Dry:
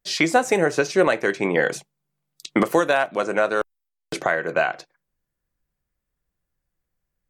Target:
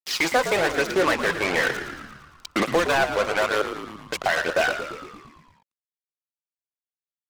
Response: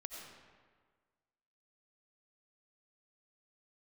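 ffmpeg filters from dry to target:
-filter_complex "[0:a]acrusher=bits=3:mix=0:aa=0.5,aphaser=in_gain=1:out_gain=1:delay=2.1:decay=0.42:speed=1.1:type=triangular,asplit=2[a][b];[b]highpass=f=720:p=1,volume=19dB,asoftclip=type=tanh:threshold=-2.5dB[c];[a][c]amix=inputs=2:normalize=0,lowpass=f=4.2k:p=1,volume=-6dB,asplit=2[d][e];[e]asplit=8[f][g][h][i][j][k][l][m];[f]adelay=114,afreqshift=-70,volume=-9.5dB[n];[g]adelay=228,afreqshift=-140,volume=-13.7dB[o];[h]adelay=342,afreqshift=-210,volume=-17.8dB[p];[i]adelay=456,afreqshift=-280,volume=-22dB[q];[j]adelay=570,afreqshift=-350,volume=-26.1dB[r];[k]adelay=684,afreqshift=-420,volume=-30.3dB[s];[l]adelay=798,afreqshift=-490,volume=-34.4dB[t];[m]adelay=912,afreqshift=-560,volume=-38.6dB[u];[n][o][p][q][r][s][t][u]amix=inputs=8:normalize=0[v];[d][v]amix=inputs=2:normalize=0,volume=-8.5dB"

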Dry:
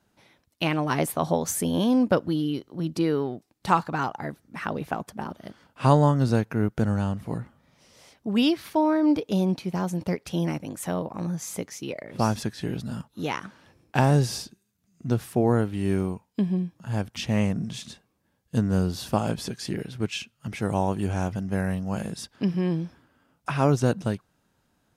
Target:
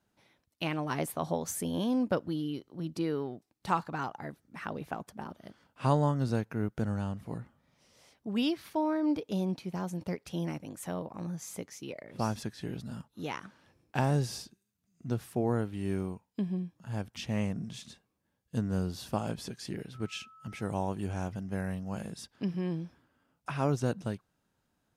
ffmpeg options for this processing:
-filter_complex "[0:a]asettb=1/sr,asplit=3[a][b][c];[a]atrim=end=19.944[d];[b]atrim=start=19.94:end=20.69,asetpts=PTS-STARTPTS,afade=t=in:d=0.004:c=qsin,afade=t=out:st=0.746:d=0.004:c=qsin,aeval=exprs='val(0)+0.00562*sin(2*PI*1300*n/s)':c=same[e];[c]atrim=start=20.686[f];[d][e]acrossfade=d=0.004:c1=hsin:c2=qsin[g];[g][f]acrossfade=d=0.004:c1=qsin:c2=hsin,volume=-8dB"

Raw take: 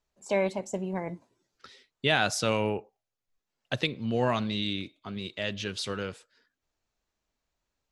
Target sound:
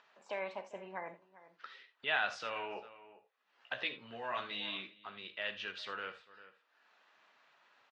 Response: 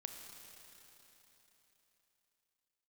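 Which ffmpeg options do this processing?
-filter_complex "[0:a]asettb=1/sr,asplit=3[a][b][c];[a]atrim=end=2.544[d];[b]atrim=start=2.54:end=5,asetpts=PTS-STARTPTS,afade=t=in:d=0.004:c=qsin,afade=t=out:st=2.456:d=0.004:c=qsin,asplit=2[e][f];[f]adelay=16,volume=-3dB[g];[e][g]amix=inputs=2:normalize=0,atrim=end_sample=108486[h];[c]atrim=start=4.996[i];[d][h]acrossfade=d=0.004:c1=hsin:c2=qsin[j];[j][i]acrossfade=d=0.004:c1=qsin:c2=hsin,asplit=2[k][l];[l]adelay=396.5,volume=-21dB,highshelf=f=4k:g=-8.92[m];[k][m]amix=inputs=2:normalize=0,acompressor=mode=upward:threshold=-39dB:ratio=2.5,lowpass=2.9k,aemphasis=mode=reproduction:type=riaa,alimiter=limit=-18dB:level=0:latency=1:release=13,highpass=1.3k,bandreject=f=2.2k:w=17[n];[1:a]atrim=start_sample=2205,atrim=end_sample=3969[o];[n][o]afir=irnorm=-1:irlink=0,volume=7dB" -ar 22050 -c:a libvorbis -b:a 48k

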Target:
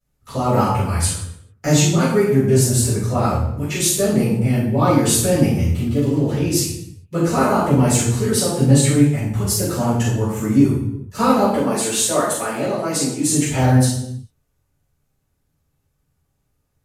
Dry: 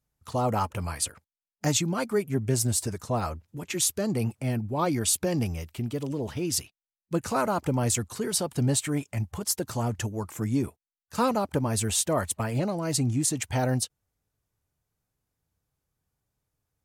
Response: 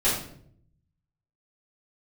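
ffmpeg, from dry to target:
-filter_complex "[0:a]asettb=1/sr,asplit=3[a][b][c];[a]atrim=end=11.514[d];[b]atrim=start=11.51:end=13.28,asetpts=PTS-STARTPTS,afade=t=in:d=0.004:c=qsin,afade=t=out:st=1.766:d=0.004:c=qsin,highpass=330[e];[c]atrim=start=13.276[f];[d][e]acrossfade=d=0.004:c1=hsin:c2=qsin[g];[g][f]acrossfade=d=0.004:c1=qsin:c2=hsin[h];[1:a]atrim=start_sample=2205,afade=t=out:st=0.38:d=0.01,atrim=end_sample=17199,asetrate=31311,aresample=44100[i];[h][i]afir=irnorm=-1:irlink=0,volume=-6.5dB"

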